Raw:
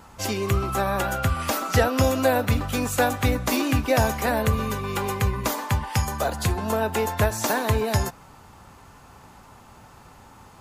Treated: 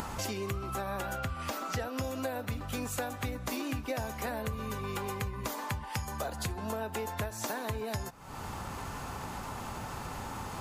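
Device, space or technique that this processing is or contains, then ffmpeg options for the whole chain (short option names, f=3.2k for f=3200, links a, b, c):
upward and downward compression: -filter_complex "[0:a]acompressor=mode=upward:threshold=-30dB:ratio=2.5,acompressor=threshold=-35dB:ratio=5,asettb=1/sr,asplit=3[a][b][c];[a]atrim=end=1.164[d];[b]atrim=start=1.16:end=1.8,asetpts=PTS-STARTPTS,afade=t=in:d=0.004:c=qsin,afade=t=out:st=0.636:d=0.004:c=qsin,equalizer=f=11k:w=0.92:g=-5.5[e];[c]atrim=start=1.796[f];[d][e]acrossfade=d=0.004:c1=hsin:c2=qsin[g];[g][f]acrossfade=d=0.004:c1=qsin:c2=hsin,volume=1dB"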